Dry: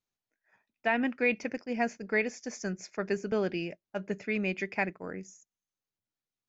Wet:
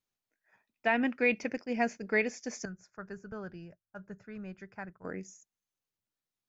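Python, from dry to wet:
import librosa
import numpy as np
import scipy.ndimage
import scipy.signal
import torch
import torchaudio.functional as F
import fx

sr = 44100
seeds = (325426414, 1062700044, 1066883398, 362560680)

y = fx.curve_eq(x, sr, hz=(120.0, 280.0, 710.0, 1500.0, 2200.0, 5800.0), db=(0, -16, -13, -4, -24, -15), at=(2.65, 5.05))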